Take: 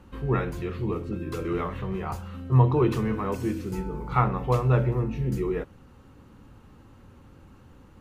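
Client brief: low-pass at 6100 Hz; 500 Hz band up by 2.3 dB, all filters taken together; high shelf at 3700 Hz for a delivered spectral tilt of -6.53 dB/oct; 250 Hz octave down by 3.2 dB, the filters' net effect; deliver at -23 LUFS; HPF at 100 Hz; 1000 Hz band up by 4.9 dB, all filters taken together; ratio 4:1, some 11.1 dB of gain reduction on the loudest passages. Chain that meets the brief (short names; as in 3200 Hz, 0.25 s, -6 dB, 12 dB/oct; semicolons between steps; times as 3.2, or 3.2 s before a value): HPF 100 Hz; LPF 6100 Hz; bell 250 Hz -7.5 dB; bell 500 Hz +4.5 dB; bell 1000 Hz +4.5 dB; high shelf 3700 Hz +8.5 dB; compressor 4:1, threshold -27 dBFS; gain +9.5 dB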